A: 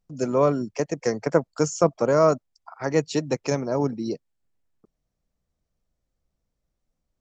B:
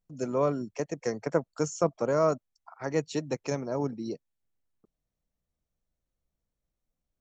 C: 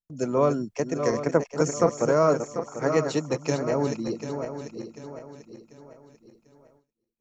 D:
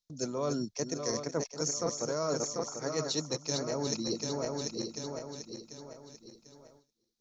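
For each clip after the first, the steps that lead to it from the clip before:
notch filter 4,900 Hz, Q 10; level −6.5 dB
feedback delay that plays each chunk backwards 371 ms, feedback 62%, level −7 dB; noise gate with hold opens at −53 dBFS; level +4.5 dB
flat-topped bell 4,800 Hz +15 dB 1.1 octaves; reversed playback; downward compressor 6 to 1, threshold −30 dBFS, peak gain reduction 14.5 dB; reversed playback

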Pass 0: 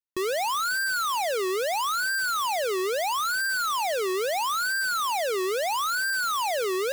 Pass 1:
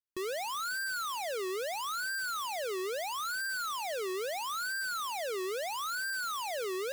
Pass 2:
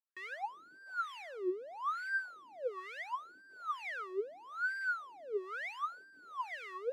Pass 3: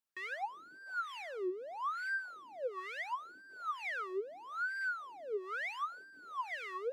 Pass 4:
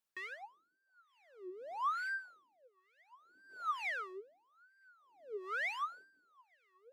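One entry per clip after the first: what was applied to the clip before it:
parametric band 890 Hz −3 dB 0.77 octaves; level −8 dB
LFO wah 1.1 Hz 280–2,100 Hz, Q 5.6; level +5.5 dB
downward compressor, threshold −37 dBFS, peak gain reduction 7 dB; level +3 dB
tremolo with a sine in dB 0.53 Hz, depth 33 dB; level +2.5 dB

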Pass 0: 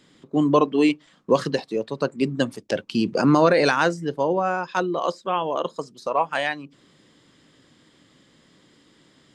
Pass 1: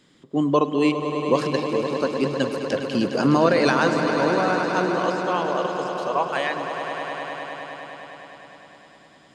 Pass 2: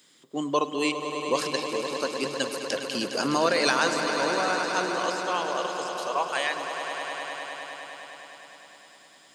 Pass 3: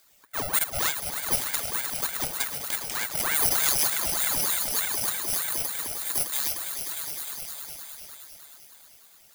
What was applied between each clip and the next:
echo that builds up and dies away 102 ms, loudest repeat 5, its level −11 dB; level −1.5 dB
RIAA equalisation recording; level −3.5 dB
samples in bit-reversed order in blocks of 64 samples; ring modulator whose carrier an LFO sweeps 1,100 Hz, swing 75%, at 3.3 Hz; level +2.5 dB

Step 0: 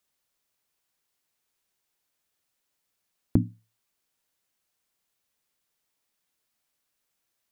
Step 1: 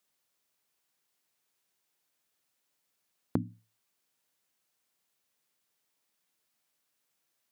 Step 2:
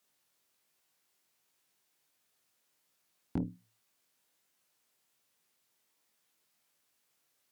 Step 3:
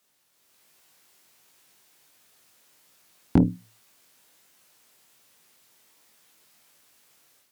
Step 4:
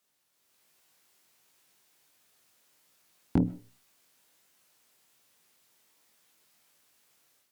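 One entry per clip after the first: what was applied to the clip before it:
high-pass filter 110 Hz; downward compressor 6 to 1, threshold −26 dBFS, peak gain reduction 9.5 dB
brickwall limiter −18 dBFS, peak gain reduction 5 dB; chorus effect 1.3 Hz, delay 18 ms, depth 5.7 ms; tube saturation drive 33 dB, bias 0.55; level +8.5 dB
automatic gain control gain up to 9 dB; level +6.5 dB
convolution reverb RT60 0.30 s, pre-delay 85 ms, DRR 20 dB; level −6.5 dB

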